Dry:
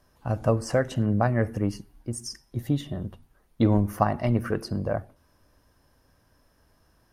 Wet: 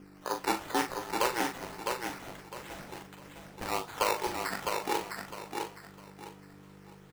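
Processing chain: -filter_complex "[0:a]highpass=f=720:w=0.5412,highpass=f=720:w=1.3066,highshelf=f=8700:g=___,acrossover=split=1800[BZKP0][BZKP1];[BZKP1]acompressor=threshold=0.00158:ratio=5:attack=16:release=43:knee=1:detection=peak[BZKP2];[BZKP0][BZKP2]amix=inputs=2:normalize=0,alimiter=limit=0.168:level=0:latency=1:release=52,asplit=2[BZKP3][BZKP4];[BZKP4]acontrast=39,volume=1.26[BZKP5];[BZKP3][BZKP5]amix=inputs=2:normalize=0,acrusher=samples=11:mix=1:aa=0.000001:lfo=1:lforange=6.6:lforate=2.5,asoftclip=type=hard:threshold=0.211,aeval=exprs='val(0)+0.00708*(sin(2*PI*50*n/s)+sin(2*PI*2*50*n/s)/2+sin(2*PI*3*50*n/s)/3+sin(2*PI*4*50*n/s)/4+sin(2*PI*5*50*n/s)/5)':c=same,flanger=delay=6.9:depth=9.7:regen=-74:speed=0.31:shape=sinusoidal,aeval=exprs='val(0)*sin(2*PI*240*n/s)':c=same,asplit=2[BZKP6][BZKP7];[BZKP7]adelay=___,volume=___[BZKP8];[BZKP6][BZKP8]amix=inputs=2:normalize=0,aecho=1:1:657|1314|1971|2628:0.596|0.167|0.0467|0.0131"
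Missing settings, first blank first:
9, 40, 0.447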